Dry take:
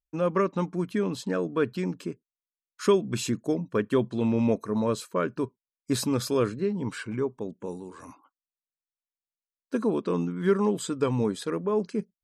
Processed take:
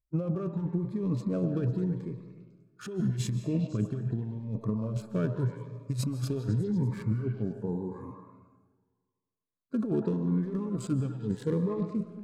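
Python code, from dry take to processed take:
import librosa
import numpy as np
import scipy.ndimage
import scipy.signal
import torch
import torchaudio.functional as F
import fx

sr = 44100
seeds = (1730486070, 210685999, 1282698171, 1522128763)

p1 = fx.wiener(x, sr, points=15)
p2 = fx.hpss(p1, sr, part='percussive', gain_db=-13)
p3 = fx.peak_eq(p2, sr, hz=120.0, db=14.0, octaves=0.66)
p4 = fx.over_compress(p3, sr, threshold_db=-30.0, ratio=-1.0)
p5 = p4 + fx.echo_stepped(p4, sr, ms=100, hz=750.0, octaves=0.7, feedback_pct=70, wet_db=-3.5, dry=0)
p6 = fx.rev_freeverb(p5, sr, rt60_s=1.5, hf_ratio=0.65, predelay_ms=110, drr_db=11.5)
y = fx.notch_cascade(p6, sr, direction='rising', hz=0.84)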